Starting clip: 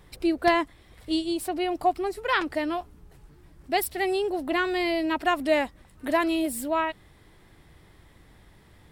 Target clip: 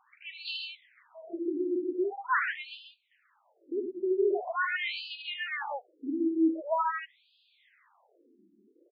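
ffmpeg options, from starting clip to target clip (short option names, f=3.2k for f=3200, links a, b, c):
-af "aecho=1:1:41|78|139:0.251|0.501|0.596,afftfilt=real='re*between(b*sr/1024,270*pow(3600/270,0.5+0.5*sin(2*PI*0.44*pts/sr))/1.41,270*pow(3600/270,0.5+0.5*sin(2*PI*0.44*pts/sr))*1.41)':imag='im*between(b*sr/1024,270*pow(3600/270,0.5+0.5*sin(2*PI*0.44*pts/sr))/1.41,270*pow(3600/270,0.5+0.5*sin(2*PI*0.44*pts/sr))*1.41)':win_size=1024:overlap=0.75,volume=-1.5dB"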